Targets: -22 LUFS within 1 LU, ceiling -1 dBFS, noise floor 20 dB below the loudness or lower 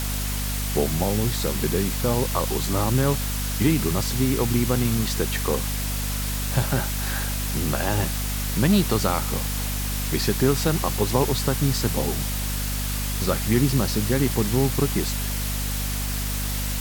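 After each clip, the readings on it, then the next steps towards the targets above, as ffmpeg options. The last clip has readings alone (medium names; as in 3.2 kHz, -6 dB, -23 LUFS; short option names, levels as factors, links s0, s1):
hum 50 Hz; highest harmonic 250 Hz; hum level -25 dBFS; noise floor -27 dBFS; noise floor target -44 dBFS; loudness -23.5 LUFS; peak level -5.5 dBFS; loudness target -22.0 LUFS
-> -af "bandreject=f=50:t=h:w=6,bandreject=f=100:t=h:w=6,bandreject=f=150:t=h:w=6,bandreject=f=200:t=h:w=6,bandreject=f=250:t=h:w=6"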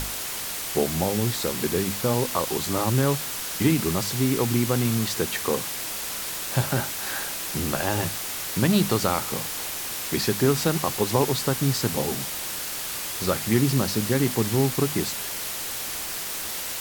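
hum not found; noise floor -32 dBFS; noise floor target -45 dBFS
-> -af "afftdn=nr=13:nf=-32"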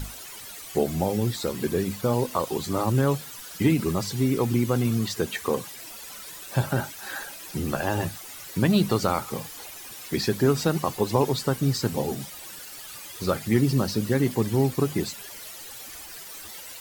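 noise floor -41 dBFS; noise floor target -46 dBFS
-> -af "afftdn=nr=6:nf=-41"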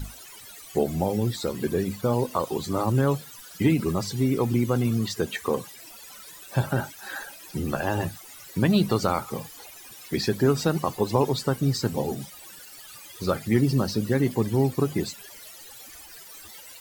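noise floor -45 dBFS; noise floor target -46 dBFS
-> -af "afftdn=nr=6:nf=-45"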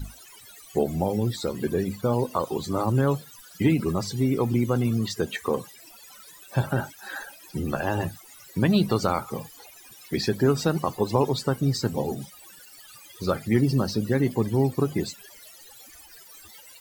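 noise floor -49 dBFS; loudness -26.0 LUFS; peak level -7.0 dBFS; loudness target -22.0 LUFS
-> -af "volume=1.58"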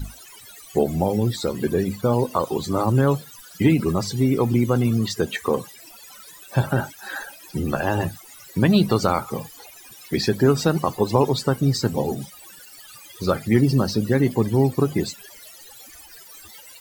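loudness -22.0 LUFS; peak level -3.0 dBFS; noise floor -45 dBFS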